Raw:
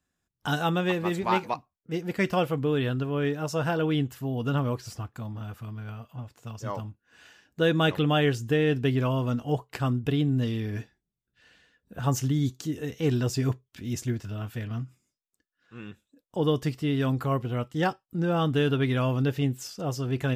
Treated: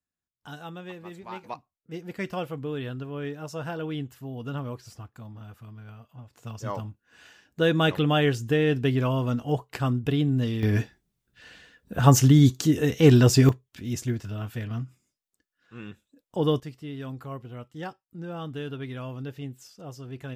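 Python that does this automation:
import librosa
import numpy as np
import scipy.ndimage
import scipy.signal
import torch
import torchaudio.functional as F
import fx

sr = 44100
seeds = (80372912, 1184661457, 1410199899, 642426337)

y = fx.gain(x, sr, db=fx.steps((0.0, -14.0), (1.44, -6.5), (6.33, 1.0), (10.63, 9.5), (13.49, 1.0), (16.6, -10.5)))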